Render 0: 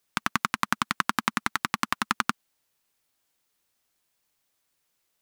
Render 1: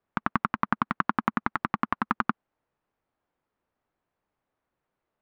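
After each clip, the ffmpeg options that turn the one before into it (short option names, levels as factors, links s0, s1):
-af "lowpass=1200,volume=1.5"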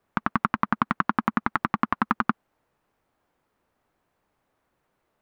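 -af "alimiter=limit=0.188:level=0:latency=1:release=21,volume=2.82"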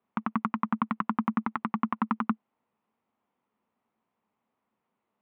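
-af "highpass=130,equalizer=f=140:t=q:w=4:g=-5,equalizer=f=220:t=q:w=4:g=10,equalizer=f=320:t=q:w=4:g=-4,equalizer=f=580:t=q:w=4:g=-4,equalizer=f=1000:t=q:w=4:g=3,equalizer=f=1600:t=q:w=4:g=-7,lowpass=f=3300:w=0.5412,lowpass=f=3300:w=1.3066,volume=0.473"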